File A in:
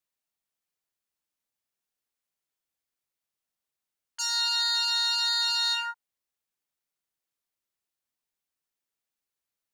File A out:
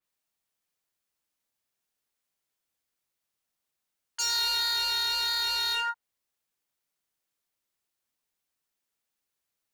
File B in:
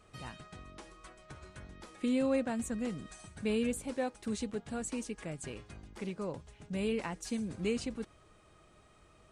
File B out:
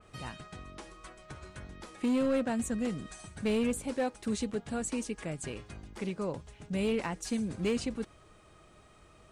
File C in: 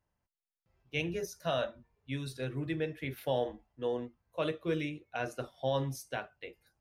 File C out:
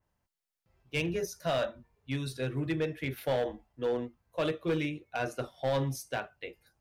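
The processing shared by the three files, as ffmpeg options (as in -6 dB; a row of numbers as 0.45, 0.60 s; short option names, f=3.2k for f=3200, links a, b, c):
-filter_complex "[0:a]asplit=2[a][b];[b]aeval=exprs='0.0376*(abs(mod(val(0)/0.0376+3,4)-2)-1)':c=same,volume=-3dB[c];[a][c]amix=inputs=2:normalize=0,adynamicequalizer=threshold=0.01:dfrequency=3600:dqfactor=0.7:tfrequency=3600:tqfactor=0.7:attack=5:release=100:ratio=0.375:range=2.5:mode=cutabove:tftype=highshelf,volume=-1dB"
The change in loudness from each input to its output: -2.0, +2.5, +2.5 LU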